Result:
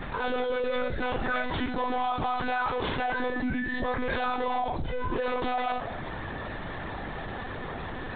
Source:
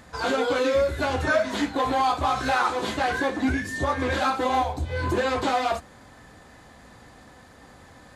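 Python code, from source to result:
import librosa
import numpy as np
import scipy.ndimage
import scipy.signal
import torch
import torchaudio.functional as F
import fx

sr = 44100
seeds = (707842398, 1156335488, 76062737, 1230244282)

y = fx.room_shoebox(x, sr, seeds[0], volume_m3=2700.0, walls='furnished', distance_m=0.42)
y = fx.lpc_monotone(y, sr, seeds[1], pitch_hz=250.0, order=16)
y = fx.env_flatten(y, sr, amount_pct=70)
y = y * librosa.db_to_amplitude(-7.5)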